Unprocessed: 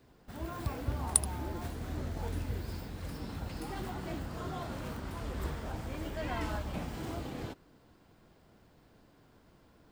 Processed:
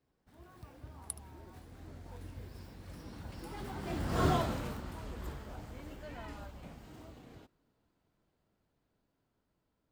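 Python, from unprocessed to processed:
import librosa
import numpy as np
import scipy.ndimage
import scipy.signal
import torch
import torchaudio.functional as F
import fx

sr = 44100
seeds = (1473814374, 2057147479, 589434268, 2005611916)

y = fx.doppler_pass(x, sr, speed_mps=17, closest_m=1.9, pass_at_s=4.27)
y = fx.rider(y, sr, range_db=4, speed_s=2.0)
y = y * librosa.db_to_amplitude(10.5)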